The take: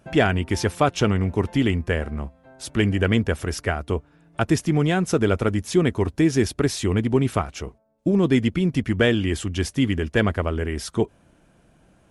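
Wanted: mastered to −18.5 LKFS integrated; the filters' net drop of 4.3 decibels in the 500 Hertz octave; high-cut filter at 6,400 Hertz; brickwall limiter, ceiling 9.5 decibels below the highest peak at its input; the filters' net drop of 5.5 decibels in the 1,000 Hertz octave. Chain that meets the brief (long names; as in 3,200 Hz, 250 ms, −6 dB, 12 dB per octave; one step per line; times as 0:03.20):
low-pass filter 6,400 Hz
parametric band 500 Hz −4.5 dB
parametric band 1,000 Hz −6.5 dB
level +9.5 dB
brickwall limiter −7 dBFS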